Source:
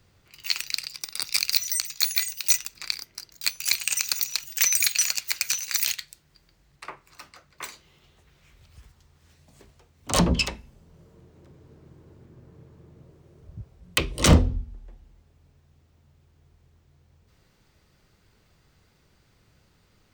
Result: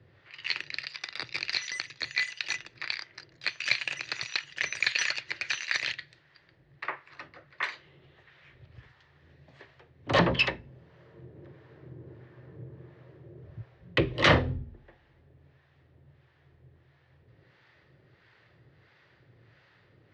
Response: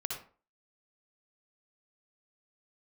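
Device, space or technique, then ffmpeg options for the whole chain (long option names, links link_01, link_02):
guitar amplifier with harmonic tremolo: -filter_complex "[0:a]acrossover=split=630[link_01][link_02];[link_01]aeval=exprs='val(0)*(1-0.7/2+0.7/2*cos(2*PI*1.5*n/s))':channel_layout=same[link_03];[link_02]aeval=exprs='val(0)*(1-0.7/2-0.7/2*cos(2*PI*1.5*n/s))':channel_layout=same[link_04];[link_03][link_04]amix=inputs=2:normalize=0,asoftclip=type=tanh:threshold=-17dB,highpass=110,equalizer=frequency=120:width_type=q:width=4:gain=9,equalizer=frequency=210:width_type=q:width=4:gain=-8,equalizer=frequency=350:width_type=q:width=4:gain=4,equalizer=frequency=560:width_type=q:width=4:gain=4,equalizer=frequency=1800:width_type=q:width=4:gain=10,lowpass=frequency=3900:width=0.5412,lowpass=frequency=3900:width=1.3066,volume=4.5dB"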